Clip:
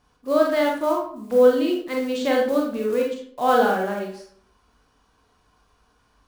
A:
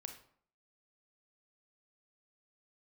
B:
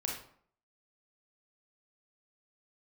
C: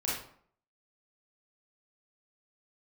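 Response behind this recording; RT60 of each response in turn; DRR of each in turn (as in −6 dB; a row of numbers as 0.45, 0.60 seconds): B; 0.60, 0.60, 0.60 seconds; 5.5, −1.5, −7.0 decibels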